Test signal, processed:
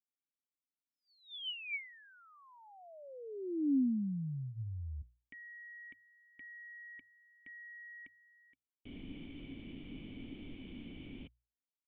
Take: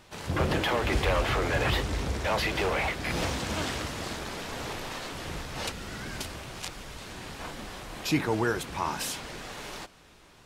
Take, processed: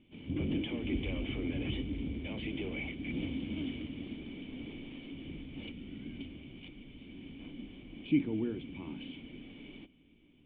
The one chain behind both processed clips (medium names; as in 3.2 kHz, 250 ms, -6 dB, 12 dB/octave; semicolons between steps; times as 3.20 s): cascade formant filter i; hum notches 60/120 Hz; trim +4 dB